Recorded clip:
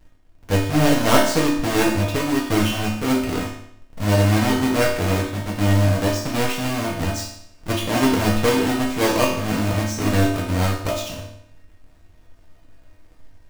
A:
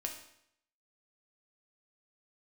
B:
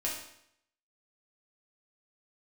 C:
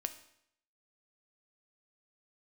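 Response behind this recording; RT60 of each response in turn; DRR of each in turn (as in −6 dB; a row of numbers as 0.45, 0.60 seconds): B; 0.70, 0.70, 0.70 seconds; 1.5, −5.0, 8.0 decibels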